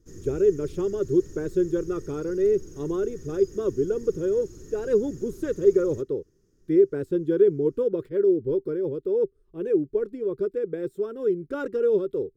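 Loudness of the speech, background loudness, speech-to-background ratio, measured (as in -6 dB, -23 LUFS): -25.5 LUFS, -45.5 LUFS, 20.0 dB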